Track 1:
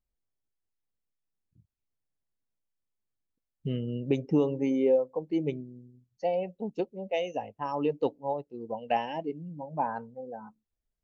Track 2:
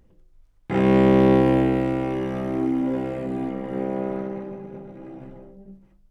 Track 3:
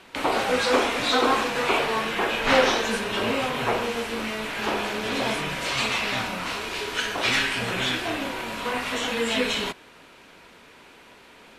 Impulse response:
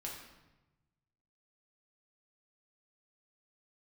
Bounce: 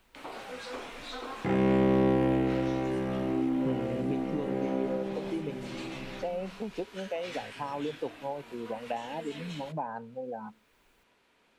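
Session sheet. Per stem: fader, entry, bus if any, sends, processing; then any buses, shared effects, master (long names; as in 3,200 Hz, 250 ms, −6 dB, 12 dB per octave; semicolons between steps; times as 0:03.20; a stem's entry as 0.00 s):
−2.0 dB, 0.00 s, no send, multiband upward and downward compressor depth 70%
+0.5 dB, 0.75 s, no send, no processing
−18.0 dB, 0.00 s, no send, no processing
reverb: not used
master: downward compressor 1.5 to 1, threshold −37 dBFS, peak gain reduction 9 dB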